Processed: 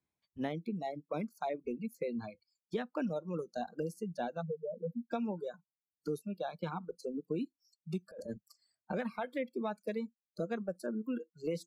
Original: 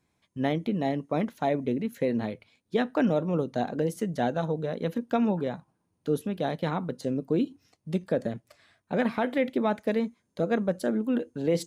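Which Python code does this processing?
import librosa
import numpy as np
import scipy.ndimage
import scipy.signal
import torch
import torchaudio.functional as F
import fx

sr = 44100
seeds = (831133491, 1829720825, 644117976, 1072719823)

y = fx.spec_expand(x, sr, power=2.8, at=(4.41, 5.11), fade=0.02)
y = fx.noise_reduce_blind(y, sr, reduce_db=28)
y = fx.over_compress(y, sr, threshold_db=-37.0, ratio=-1.0, at=(8.11, 8.92))
y = fx.dereverb_blind(y, sr, rt60_s=1.9)
y = fx.band_squash(y, sr, depth_pct=70)
y = y * 10.0 ** (-9.0 / 20.0)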